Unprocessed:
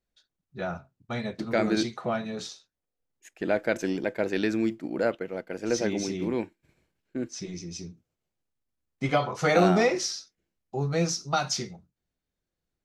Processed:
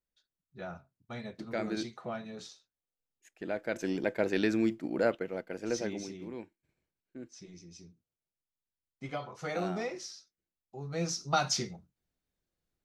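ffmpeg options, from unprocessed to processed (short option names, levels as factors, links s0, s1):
-af "volume=3.16,afade=t=in:st=3.64:d=0.42:silence=0.421697,afade=t=out:st=5.2:d=1:silence=0.266073,afade=t=in:st=10.83:d=0.56:silence=0.251189"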